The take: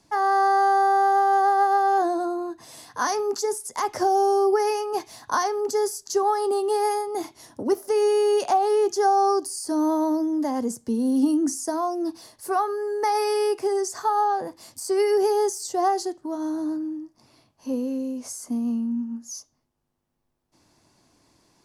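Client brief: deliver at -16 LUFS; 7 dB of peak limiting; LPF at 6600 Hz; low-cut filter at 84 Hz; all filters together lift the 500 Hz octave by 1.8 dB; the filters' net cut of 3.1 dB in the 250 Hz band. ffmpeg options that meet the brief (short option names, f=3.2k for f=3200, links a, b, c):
-af "highpass=84,lowpass=6.6k,equalizer=f=250:t=o:g=-7,equalizer=f=500:t=o:g=5.5,volume=9dB,alimiter=limit=-7.5dB:level=0:latency=1"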